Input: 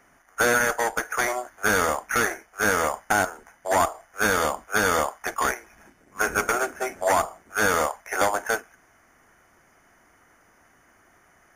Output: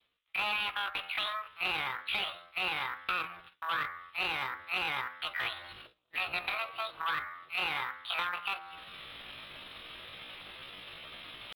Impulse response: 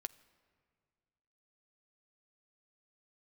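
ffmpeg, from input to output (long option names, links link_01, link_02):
-filter_complex "[0:a]bandreject=frequency=50.26:width_type=h:width=4,bandreject=frequency=100.52:width_type=h:width=4,bandreject=frequency=150.78:width_type=h:width=4,bandreject=frequency=201.04:width_type=h:width=4,bandreject=frequency=251.3:width_type=h:width=4,bandreject=frequency=301.56:width_type=h:width=4,bandreject=frequency=351.82:width_type=h:width=4,bandreject=frequency=402.08:width_type=h:width=4,bandreject=frequency=452.34:width_type=h:width=4,bandreject=frequency=502.6:width_type=h:width=4,bandreject=frequency=552.86:width_type=h:width=4,bandreject=frequency=603.12:width_type=h:width=4,bandreject=frequency=653.38:width_type=h:width=4,bandreject=frequency=703.64:width_type=h:width=4,bandreject=frequency=753.9:width_type=h:width=4,bandreject=frequency=804.16:width_type=h:width=4,bandreject=frequency=854.42:width_type=h:width=4,bandreject=frequency=904.68:width_type=h:width=4,bandreject=frequency=954.94:width_type=h:width=4,bandreject=frequency=1005.2:width_type=h:width=4,bandreject=frequency=1055.46:width_type=h:width=4,bandreject=frequency=1105.72:width_type=h:width=4,bandreject=frequency=1155.98:width_type=h:width=4,bandreject=frequency=1206.24:width_type=h:width=4,bandreject=frequency=1256.5:width_type=h:width=4,bandreject=frequency=1306.76:width_type=h:width=4,areverse,acompressor=mode=upward:threshold=-34dB:ratio=2.5,areverse,agate=range=-33dB:threshold=-43dB:ratio=3:detection=peak,adynamicequalizer=threshold=0.01:dfrequency=780:dqfactor=2.3:tfrequency=780:tqfactor=2.3:attack=5:release=100:ratio=0.375:range=2.5:mode=boostabove:tftype=bell,acrossover=split=640|3900[link_01][link_02][link_03];[link_03]asoftclip=type=tanh:threshold=-31dB[link_04];[link_01][link_02][link_04]amix=inputs=3:normalize=0,asetrate=76340,aresample=44100,atempo=0.577676,acompressor=threshold=-44dB:ratio=2,highshelf=frequency=4900:width_type=q:width=3:gain=-9,bandreject=frequency=420:width=12"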